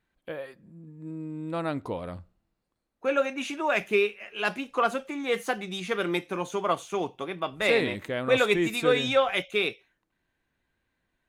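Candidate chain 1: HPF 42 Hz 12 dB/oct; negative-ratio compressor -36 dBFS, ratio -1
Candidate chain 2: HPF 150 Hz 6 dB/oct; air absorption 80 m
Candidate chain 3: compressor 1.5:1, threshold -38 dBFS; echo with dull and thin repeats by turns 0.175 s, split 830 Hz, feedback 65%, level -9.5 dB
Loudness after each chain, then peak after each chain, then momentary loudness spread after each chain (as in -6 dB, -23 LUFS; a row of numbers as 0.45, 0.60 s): -35.0, -28.5, -33.5 LUFS; -17.0, -9.5, -15.5 dBFS; 7, 15, 14 LU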